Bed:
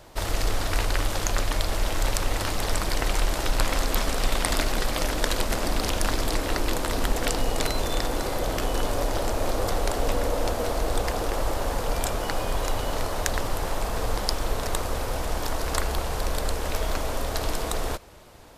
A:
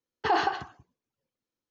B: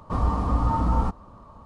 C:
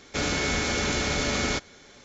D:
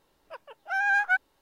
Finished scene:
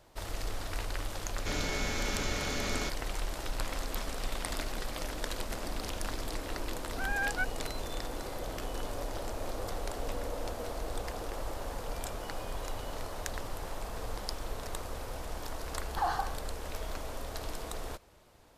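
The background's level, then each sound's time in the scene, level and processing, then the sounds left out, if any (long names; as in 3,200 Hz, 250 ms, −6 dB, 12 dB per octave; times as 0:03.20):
bed −11.5 dB
0:01.31: mix in C −9 dB
0:06.28: mix in D −9.5 dB
0:15.72: mix in A −5 dB + phaser with its sweep stopped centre 990 Hz, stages 4
not used: B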